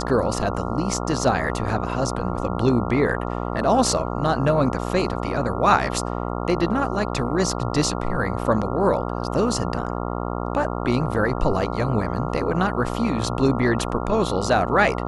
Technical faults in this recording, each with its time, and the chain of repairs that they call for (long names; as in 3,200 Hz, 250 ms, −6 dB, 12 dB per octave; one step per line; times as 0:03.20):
mains buzz 60 Hz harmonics 23 −27 dBFS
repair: hum removal 60 Hz, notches 23